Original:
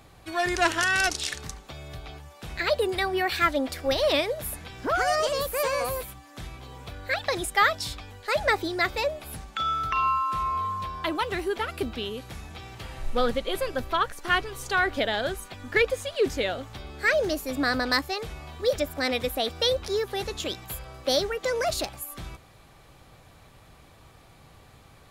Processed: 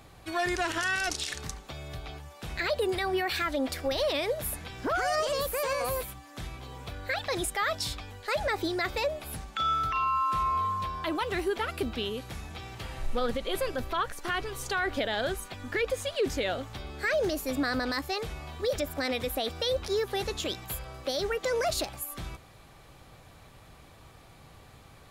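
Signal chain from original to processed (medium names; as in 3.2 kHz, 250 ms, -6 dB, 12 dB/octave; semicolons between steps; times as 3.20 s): peak limiter -20.5 dBFS, peak gain reduction 10.5 dB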